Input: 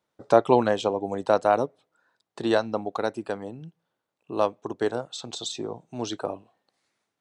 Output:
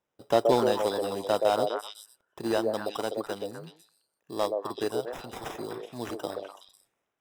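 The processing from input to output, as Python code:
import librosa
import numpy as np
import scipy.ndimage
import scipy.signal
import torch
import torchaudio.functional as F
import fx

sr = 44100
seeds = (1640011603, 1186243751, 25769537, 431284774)

y = fx.sample_hold(x, sr, seeds[0], rate_hz=4400.0, jitter_pct=0)
y = fx.echo_stepped(y, sr, ms=125, hz=480.0, octaves=1.4, feedback_pct=70, wet_db=-0.5)
y = fx.slew_limit(y, sr, full_power_hz=310.0)
y = y * librosa.db_to_amplitude(-5.0)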